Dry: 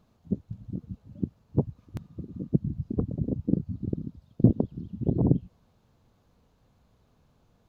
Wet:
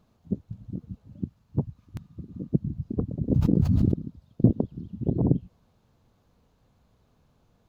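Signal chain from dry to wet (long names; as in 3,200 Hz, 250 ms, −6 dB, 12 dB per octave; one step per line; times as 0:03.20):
0:01.16–0:02.32: parametric band 470 Hz −7 dB 1.5 octaves
0:03.30–0:03.94: envelope flattener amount 100%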